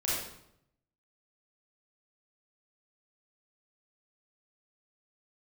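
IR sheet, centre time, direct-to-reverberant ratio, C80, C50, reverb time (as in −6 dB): 72 ms, −7.5 dB, 2.5 dB, −2.0 dB, 0.75 s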